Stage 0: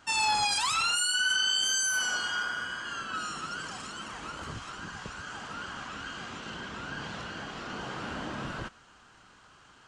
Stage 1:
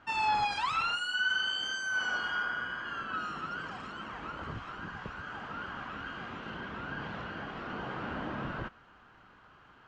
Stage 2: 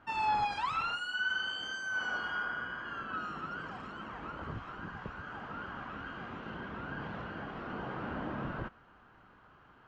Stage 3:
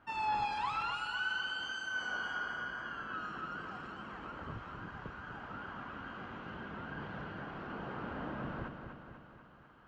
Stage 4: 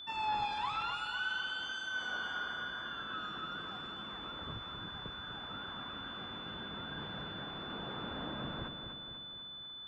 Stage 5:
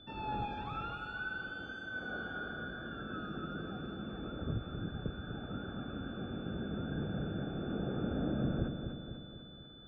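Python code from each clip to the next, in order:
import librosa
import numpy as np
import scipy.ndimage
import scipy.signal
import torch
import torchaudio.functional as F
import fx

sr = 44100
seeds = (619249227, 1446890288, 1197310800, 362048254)

y1 = scipy.signal.sosfilt(scipy.signal.butter(2, 2300.0, 'lowpass', fs=sr, output='sos'), x)
y2 = fx.high_shelf(y1, sr, hz=2100.0, db=-8.5)
y3 = fx.echo_feedback(y2, sr, ms=247, feedback_pct=57, wet_db=-7)
y3 = F.gain(torch.from_numpy(y3), -3.5).numpy()
y4 = y3 + 10.0 ** (-44.0 / 20.0) * np.sin(2.0 * np.pi * 3500.0 * np.arange(len(y3)) / sr)
y4 = F.gain(torch.from_numpy(y4), -1.0).numpy()
y5 = np.convolve(y4, np.full(44, 1.0 / 44))[:len(y4)]
y5 = F.gain(torch.from_numpy(y5), 10.5).numpy()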